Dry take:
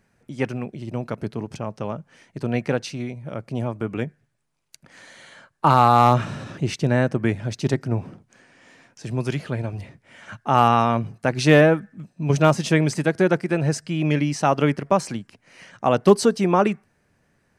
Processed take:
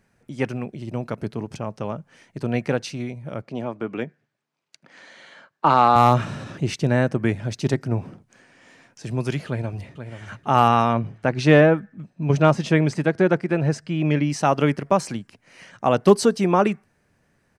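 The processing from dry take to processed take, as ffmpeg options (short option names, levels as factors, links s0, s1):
-filter_complex "[0:a]asettb=1/sr,asplit=3[s0][s1][s2];[s0]atrim=end=3.424[s3];[s1]atrim=start=3.42:end=5.96,asetpts=PTS-STARTPTS,afade=t=in:d=0.004:c=qsin,afade=t=out:st=2.536:d=0.004:c=qsin,highpass=200,lowpass=5200[s4];[s2]atrim=start=5.956[s5];[s3][s4]acrossfade=d=0.004:c1=hsin:c2=qsin[s6];[s6][s5]acrossfade=d=0.004:c1=qsin:c2=hsin,asplit=2[s7][s8];[s8]afade=t=in:st=9.47:d=0.01,afade=t=out:st=10.37:d=0.01,aecho=0:1:480|960|1440|1920:0.334965|0.117238|0.0410333|0.0143616[s9];[s7][s9]amix=inputs=2:normalize=0,asettb=1/sr,asplit=3[s10][s11][s12];[s10]atrim=end=10.934[s13];[s11]atrim=start=10.93:end=14.3,asetpts=PTS-STARTPTS,afade=t=in:d=0.004:c=qsin,afade=t=out:st=3.366:d=0.004:c=qsin,aemphasis=mode=reproduction:type=50fm[s14];[s12]atrim=start=14.296[s15];[s13][s14]acrossfade=d=0.004:c1=hsin:c2=qsin[s16];[s16][s15]acrossfade=d=0.004:c1=qsin:c2=hsin"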